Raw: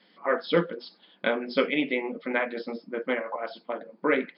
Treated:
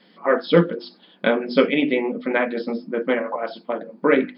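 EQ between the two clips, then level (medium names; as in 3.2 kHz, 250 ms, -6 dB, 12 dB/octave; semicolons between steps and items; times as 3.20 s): bass shelf 340 Hz +9.5 dB; hum notches 50/100/150/200/250/300/350 Hz; band-stop 2.1 kHz, Q 26; +4.5 dB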